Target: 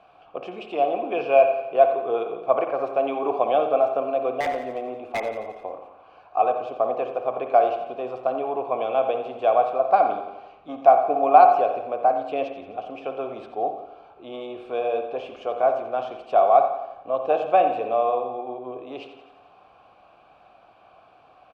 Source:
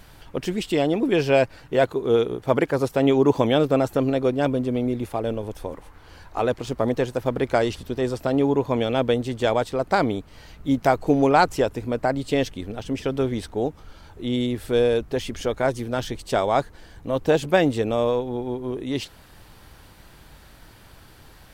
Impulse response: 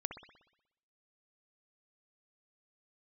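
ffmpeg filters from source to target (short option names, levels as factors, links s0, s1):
-filter_complex "[0:a]aemphasis=mode=reproduction:type=75kf,bandreject=f=79.85:t=h:w=4,bandreject=f=159.7:t=h:w=4,bandreject=f=239.55:t=h:w=4,bandreject=f=319.4:t=h:w=4,bandreject=f=399.25:t=h:w=4,bandreject=f=479.1:t=h:w=4,bandreject=f=558.95:t=h:w=4,bandreject=f=638.8:t=h:w=4,bandreject=f=718.65:t=h:w=4,bandreject=f=798.5:t=h:w=4,bandreject=f=878.35:t=h:w=4,bandreject=f=958.2:t=h:w=4,bandreject=f=1038.05:t=h:w=4,bandreject=f=1117.9:t=h:w=4,bandreject=f=1197.75:t=h:w=4,bandreject=f=1277.6:t=h:w=4,bandreject=f=1357.45:t=h:w=4,bandreject=f=1437.3:t=h:w=4,bandreject=f=1517.15:t=h:w=4,bandreject=f=1597:t=h:w=4,bandreject=f=1676.85:t=h:w=4,bandreject=f=1756.7:t=h:w=4,bandreject=f=1836.55:t=h:w=4,bandreject=f=1916.4:t=h:w=4,bandreject=f=1996.25:t=h:w=4,bandreject=f=2076.1:t=h:w=4,bandreject=f=2155.95:t=h:w=4,bandreject=f=2235.8:t=h:w=4,bandreject=f=2315.65:t=h:w=4,acrossover=split=290[s0][s1];[s0]asoftclip=type=tanh:threshold=0.0282[s2];[s2][s1]amix=inputs=2:normalize=0,asplit=3[s3][s4][s5];[s3]bandpass=f=730:t=q:w=8,volume=1[s6];[s4]bandpass=f=1090:t=q:w=8,volume=0.501[s7];[s5]bandpass=f=2440:t=q:w=8,volume=0.355[s8];[s6][s7][s8]amix=inputs=3:normalize=0,asettb=1/sr,asplit=3[s9][s10][s11];[s9]atrim=end=4.404[s12];[s10]atrim=start=4.4:end=5.2,asetpts=PTS-STARTPTS,afade=t=in:d=0.004:c=qsin,afade=t=out:st=0.796:d=0.004:c=qsin,aeval=exprs='0.0299*(abs(mod(val(0)/0.0299+3,4)-2)-1)':c=same[s13];[s11]atrim=start=5.196[s14];[s12][s13]acrossfade=d=0.004:c1=hsin:c2=qsin[s15];[s15][s14]acrossfade=d=0.004:c1=qsin:c2=hsin,aecho=1:1:87|174|261|348|435|522:0.251|0.146|0.0845|0.049|0.0284|0.0165,asplit=2[s16][s17];[1:a]atrim=start_sample=2205,asetrate=48510,aresample=44100[s18];[s17][s18]afir=irnorm=-1:irlink=0,volume=1.78[s19];[s16][s19]amix=inputs=2:normalize=0,volume=1.5"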